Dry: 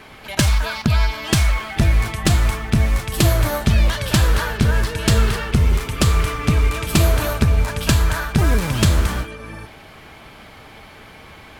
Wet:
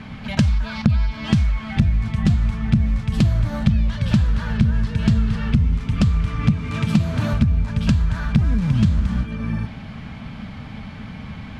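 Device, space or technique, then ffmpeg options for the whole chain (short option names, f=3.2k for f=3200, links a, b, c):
jukebox: -filter_complex "[0:a]asettb=1/sr,asplit=3[a][b][c];[a]atrim=end=6.524[d];[b]atrim=start=6.52:end=7.33,asetpts=PTS-STARTPTS,afade=t=in:d=0.004:c=qsin,afade=t=out:st=0.806:d=0.004:c=qsin,highpass=f=97:w=0.5412,highpass=f=97:w=1.3066[e];[c]atrim=start=7.326[f];[d][e]acrossfade=d=0.004:c1=hsin:c2=qsin[g];[g][f]acrossfade=d=0.004:c1=qsin:c2=hsin,lowpass=5.2k,lowshelf=f=280:t=q:w=3:g=7.5,acompressor=threshold=-20dB:ratio=4,equalizer=f=130:t=o:w=2.4:g=4.5"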